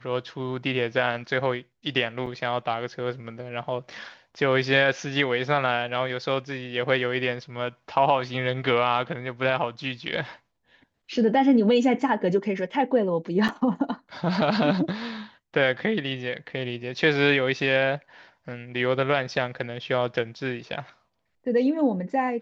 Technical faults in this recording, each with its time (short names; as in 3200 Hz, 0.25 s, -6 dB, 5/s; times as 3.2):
2.26–2.27 gap 5.2 ms
13.48–13.49 gap 6.5 ms